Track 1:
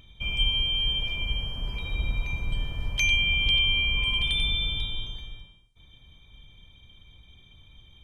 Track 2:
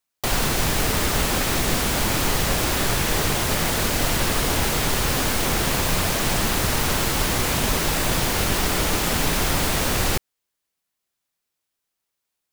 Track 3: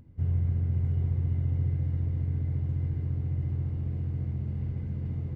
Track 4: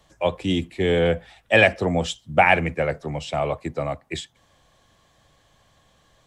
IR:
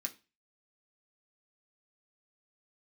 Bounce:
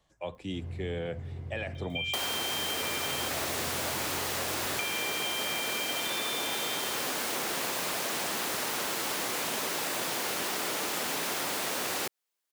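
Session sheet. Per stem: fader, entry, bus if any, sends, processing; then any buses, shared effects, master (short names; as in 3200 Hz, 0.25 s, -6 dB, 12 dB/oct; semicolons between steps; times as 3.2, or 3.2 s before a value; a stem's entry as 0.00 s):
+1.0 dB, 1.75 s, muted 3.29–4.79, bus A, no send, resonant high-pass 2300 Hz, resonance Q 1.7
-3.5 dB, 1.90 s, no bus, no send, HPF 320 Hz 12 dB/oct; upward compressor, threshold -50 dBFS
-1.0 dB, 0.35 s, bus A, no send, tone controls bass -12 dB, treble +7 dB
-12.5 dB, 0.00 s, bus A, no send, limiter -11.5 dBFS, peak gain reduction 9 dB
bus A: 0.0 dB, compressor, threshold -28 dBFS, peak gain reduction 12.5 dB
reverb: off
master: compressor, threshold -29 dBFS, peak gain reduction 7.5 dB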